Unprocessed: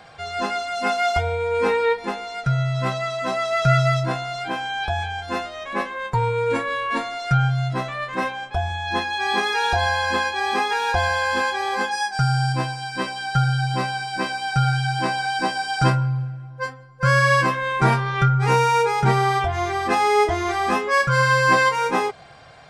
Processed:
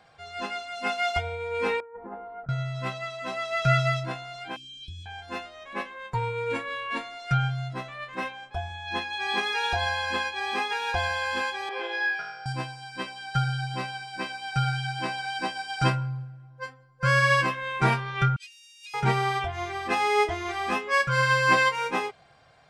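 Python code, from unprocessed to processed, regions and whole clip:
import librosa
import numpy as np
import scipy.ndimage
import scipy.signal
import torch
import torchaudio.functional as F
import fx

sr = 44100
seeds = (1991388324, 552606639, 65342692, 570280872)

y = fx.chain(x, sr, fx.lowpass(hz=1300.0, slope=24),
    fx.over_compress(threshold_db=-29.0, ratio=-1.0), at=(1.8, 2.49))
y = fx.chain(y, sr, fx.cheby1_bandstop(low_hz=320.0, high_hz=2900.0, order=4),
    fx.band_shelf(hz=990.0, db=10.0, octaves=1.3), at=(4.56, 5.06))
y = fx.chain(y, sr, fx.highpass(hz=340.0, slope=24),
    fx.air_absorb(metres=250.0),
    fx.room_flutter(wall_m=3.0, rt60_s=0.99), at=(11.69, 12.46))
y = fx.chain(y, sr, fx.ellip_highpass(hz=2700.0, order=4, stop_db=80),
    fx.comb(ms=3.2, depth=0.61),
    fx.over_compress(threshold_db=-39.0, ratio=-1.0), at=(18.36, 18.94))
y = fx.dynamic_eq(y, sr, hz=2700.0, q=1.5, threshold_db=-39.0, ratio=4.0, max_db=7)
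y = fx.upward_expand(y, sr, threshold_db=-27.0, expansion=1.5)
y = y * librosa.db_to_amplitude(-4.5)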